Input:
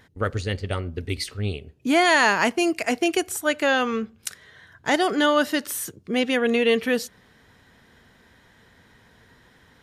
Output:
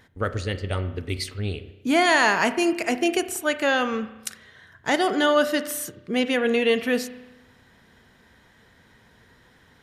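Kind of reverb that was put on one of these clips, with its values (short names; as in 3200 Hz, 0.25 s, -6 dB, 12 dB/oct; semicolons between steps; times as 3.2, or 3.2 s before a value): spring tank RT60 1 s, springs 32 ms, chirp 50 ms, DRR 11.5 dB; gain -1 dB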